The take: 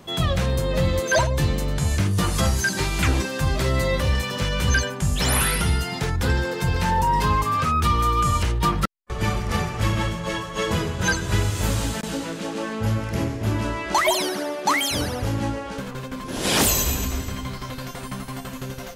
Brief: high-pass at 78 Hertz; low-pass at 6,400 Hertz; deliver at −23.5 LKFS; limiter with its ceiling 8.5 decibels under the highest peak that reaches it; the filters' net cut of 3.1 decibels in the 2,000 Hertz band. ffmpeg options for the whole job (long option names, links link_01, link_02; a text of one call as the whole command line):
ffmpeg -i in.wav -af "highpass=78,lowpass=6400,equalizer=frequency=2000:width_type=o:gain=-4,volume=4dB,alimiter=limit=-13.5dB:level=0:latency=1" out.wav